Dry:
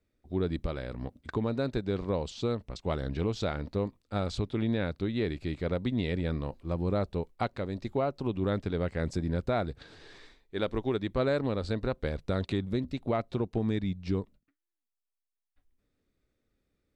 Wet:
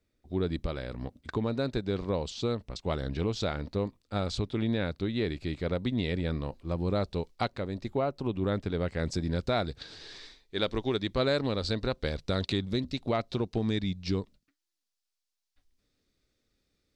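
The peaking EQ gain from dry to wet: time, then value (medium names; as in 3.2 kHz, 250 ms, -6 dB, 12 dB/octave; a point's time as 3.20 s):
peaking EQ 4.9 kHz 1.5 oct
6.75 s +4.5 dB
7.34 s +13.5 dB
7.62 s +1.5 dB
8.62 s +1.5 dB
9.45 s +12 dB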